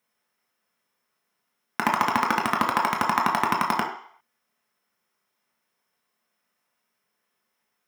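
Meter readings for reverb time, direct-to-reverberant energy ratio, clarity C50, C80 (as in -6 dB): 0.60 s, -1.0 dB, 6.5 dB, 9.5 dB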